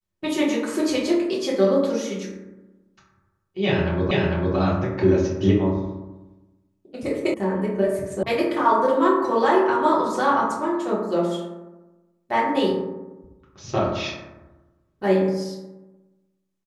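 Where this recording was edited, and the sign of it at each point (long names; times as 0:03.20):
0:04.11: the same again, the last 0.45 s
0:07.34: cut off before it has died away
0:08.23: cut off before it has died away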